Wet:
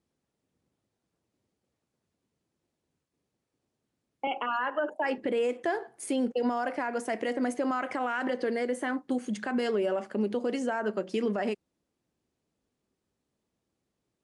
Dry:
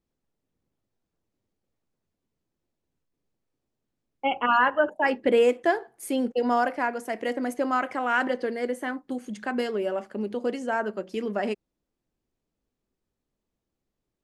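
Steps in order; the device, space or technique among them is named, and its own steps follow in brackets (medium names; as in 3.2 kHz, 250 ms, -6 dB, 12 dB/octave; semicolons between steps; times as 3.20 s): 4.27–5.18 s: high-pass 240 Hz 24 dB/octave; podcast mastering chain (high-pass 76 Hz; de-esser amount 70%; compression 4:1, threshold -25 dBFS, peak gain reduction 8 dB; peak limiter -23.5 dBFS, peak gain reduction 9 dB; trim +3.5 dB; MP3 96 kbps 24 kHz)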